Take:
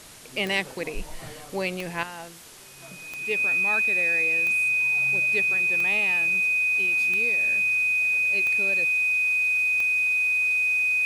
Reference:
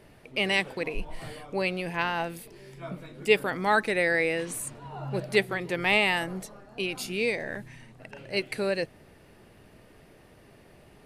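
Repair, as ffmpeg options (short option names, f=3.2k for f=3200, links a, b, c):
-af "adeclick=t=4,bandreject=f=2.5k:w=30,afwtdn=0.0056,asetnsamples=n=441:p=0,asendcmd='2.03 volume volume 9.5dB',volume=0dB"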